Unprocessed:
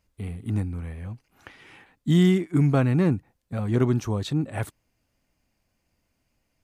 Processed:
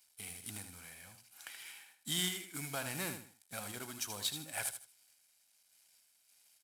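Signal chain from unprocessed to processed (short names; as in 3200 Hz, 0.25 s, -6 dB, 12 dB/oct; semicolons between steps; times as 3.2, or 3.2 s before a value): CVSD 64 kbps; differentiator; random-step tremolo; bell 6400 Hz -4 dB 0.22 oct; comb 1.3 ms, depth 33%; on a send: feedback echo 78 ms, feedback 24%, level -9 dB; on the sum: short-mantissa float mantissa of 2-bit; in parallel at +1.5 dB: compressor, threshold -56 dBFS, peak gain reduction 17.5 dB; on the sum: gain +5 dB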